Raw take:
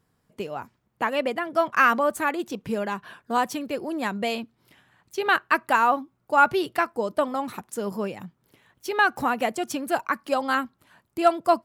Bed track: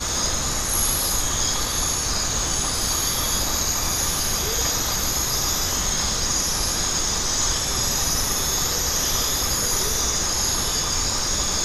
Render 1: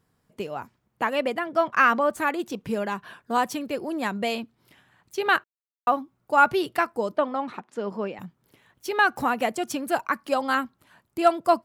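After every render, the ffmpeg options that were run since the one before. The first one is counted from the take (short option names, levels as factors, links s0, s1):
-filter_complex "[0:a]asettb=1/sr,asplit=3[s0][s1][s2];[s0]atrim=end=1.444[s3];[s1]atrim=start=1.44:end=2.18,asetpts=PTS-STARTPTS,afade=t=in:d=0.004:c=qsin,afade=t=out:st=0.736:d=0.004:c=qsin,equalizer=f=12000:w=0.6:g=-8.5[s4];[s2]atrim=start=2.176[s5];[s3][s4]acrossfade=d=0.004:c1=hsin:c2=qsin[s6];[s6][s5]acrossfade=d=0.004:c1=qsin:c2=hsin,asettb=1/sr,asplit=3[s7][s8][s9];[s7]atrim=end=7.164[s10];[s8]atrim=start=7.16:end=8.19,asetpts=PTS-STARTPTS,afade=t=in:d=0.004:c=qsin,afade=t=out:st=1.026:d=0.004:c=qsin,highpass=200,lowpass=3400[s11];[s9]atrim=start=8.186[s12];[s10][s11]acrossfade=d=0.004:c1=hsin:c2=qsin[s13];[s13][s12]acrossfade=d=0.004:c1=qsin:c2=hsin,asplit=3[s14][s15][s16];[s14]atrim=end=5.44,asetpts=PTS-STARTPTS,afade=t=out:st=5.436:d=0.004:c=hsin[s17];[s15]atrim=start=5.44:end=5.87,asetpts=PTS-STARTPTS,volume=0[s18];[s16]atrim=start=5.87,asetpts=PTS-STARTPTS,afade=t=in:d=0.004:c=hsin[s19];[s17][s18][s19]concat=n=3:v=0:a=1"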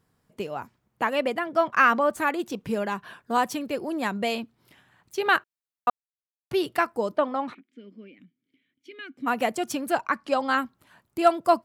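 -filter_complex "[0:a]asplit=3[s0][s1][s2];[s0]afade=t=out:st=7.53:d=0.02[s3];[s1]asplit=3[s4][s5][s6];[s4]bandpass=f=270:t=q:w=8,volume=1[s7];[s5]bandpass=f=2290:t=q:w=8,volume=0.501[s8];[s6]bandpass=f=3010:t=q:w=8,volume=0.355[s9];[s7][s8][s9]amix=inputs=3:normalize=0,afade=t=in:st=7.53:d=0.02,afade=t=out:st=9.26:d=0.02[s10];[s2]afade=t=in:st=9.26:d=0.02[s11];[s3][s10][s11]amix=inputs=3:normalize=0,asettb=1/sr,asplit=3[s12][s13][s14];[s12]atrim=end=9.924[s15];[s13]atrim=start=9.92:end=10.58,asetpts=PTS-STARTPTS,afade=t=in:d=0.004:c=qsin,afade=t=out:st=0.656:d=0.004:c=qsin,lowpass=7100[s16];[s14]atrim=start=10.576[s17];[s15][s16]acrossfade=d=0.004:c1=hsin:c2=qsin[s18];[s18][s17]acrossfade=d=0.004:c1=qsin:c2=hsin,asplit=3[s19][s20][s21];[s19]atrim=end=5.9,asetpts=PTS-STARTPTS,afade=t=out:st=5.896:d=0.004:c=hsin[s22];[s20]atrim=start=5.9:end=6.51,asetpts=PTS-STARTPTS,volume=0[s23];[s21]atrim=start=6.51,asetpts=PTS-STARTPTS,afade=t=in:d=0.004:c=hsin[s24];[s22][s23][s24]concat=n=3:v=0:a=1"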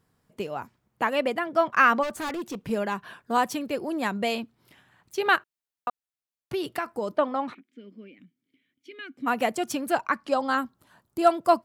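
-filter_complex "[0:a]asplit=3[s0][s1][s2];[s0]afade=t=out:st=2.02:d=0.02[s3];[s1]volume=26.6,asoftclip=hard,volume=0.0376,afade=t=in:st=2.02:d=0.02,afade=t=out:st=2.69:d=0.02[s4];[s2]afade=t=in:st=2.69:d=0.02[s5];[s3][s4][s5]amix=inputs=3:normalize=0,asettb=1/sr,asplit=3[s6][s7][s8];[s6]atrim=end=5.354[s9];[s7]atrim=start=5.35:end=7.08,asetpts=PTS-STARTPTS,afade=t=in:d=0.004:c=qsin,afade=t=out:st=1.726:d=0.004:c=qsin,acompressor=threshold=0.0631:ratio=6:attack=3.2:release=140:knee=1:detection=peak[s10];[s8]atrim=start=7.076[s11];[s9][s10]acrossfade=d=0.004:c1=hsin:c2=qsin[s12];[s12][s11]acrossfade=d=0.004:c1=qsin:c2=hsin,asettb=1/sr,asplit=3[s13][s14][s15];[s13]atrim=end=10.304[s16];[s14]atrim=start=10.3:end=11.28,asetpts=PTS-STARTPTS,afade=t=in:d=0.004:c=qsin,afade=t=out:st=0.976:d=0.004:c=qsin,equalizer=f=2300:w=1.7:g=-7[s17];[s15]atrim=start=11.276[s18];[s16][s17]acrossfade=d=0.004:c1=hsin:c2=qsin[s19];[s19][s18]acrossfade=d=0.004:c1=qsin:c2=hsin"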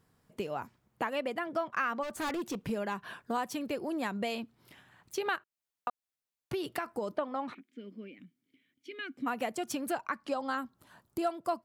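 -af "acompressor=threshold=0.0224:ratio=3"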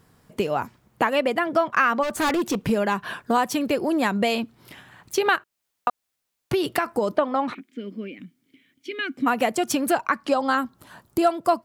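-af "volume=3.98"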